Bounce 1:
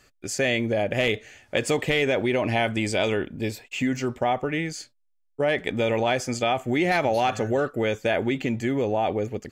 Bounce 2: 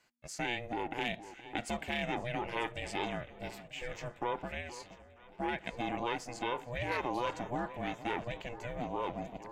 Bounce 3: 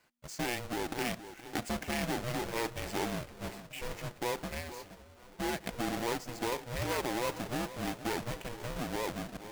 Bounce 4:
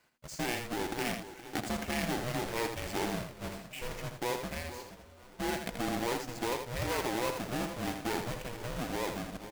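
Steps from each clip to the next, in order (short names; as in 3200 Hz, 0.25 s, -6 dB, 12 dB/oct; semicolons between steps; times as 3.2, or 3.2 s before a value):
tone controls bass -13 dB, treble -3 dB; echo with dull and thin repeats by turns 0.471 s, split 1000 Hz, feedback 72%, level -13.5 dB; ring modulator 240 Hz; gain -8.5 dB
half-waves squared off; gain -3 dB
echo 81 ms -7 dB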